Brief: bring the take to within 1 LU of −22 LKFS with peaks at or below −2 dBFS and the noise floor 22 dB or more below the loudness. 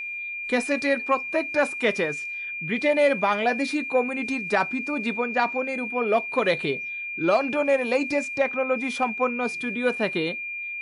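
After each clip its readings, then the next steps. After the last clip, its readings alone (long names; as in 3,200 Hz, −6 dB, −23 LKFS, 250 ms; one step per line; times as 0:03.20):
interfering tone 2,400 Hz; level of the tone −30 dBFS; integrated loudness −24.5 LKFS; sample peak −9.0 dBFS; target loudness −22.0 LKFS
→ notch filter 2,400 Hz, Q 30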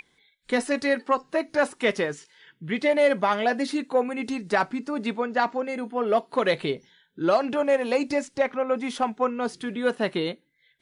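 interfering tone none found; integrated loudness −25.5 LKFS; sample peak −9.5 dBFS; target loudness −22.0 LKFS
→ level +3.5 dB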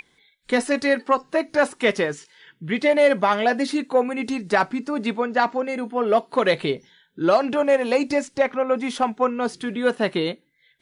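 integrated loudness −22.0 LKFS; sample peak −6.0 dBFS; background noise floor −64 dBFS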